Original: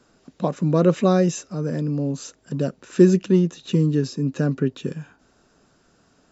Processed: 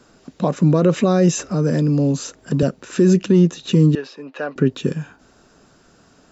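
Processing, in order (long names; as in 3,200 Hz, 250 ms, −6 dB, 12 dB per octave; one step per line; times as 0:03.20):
0:03.95–0:04.56: Chebyshev band-pass filter 660–2,900 Hz, order 2
brickwall limiter −13 dBFS, peak gain reduction 10 dB
0:01.39–0:02.63: multiband upward and downward compressor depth 40%
level +7 dB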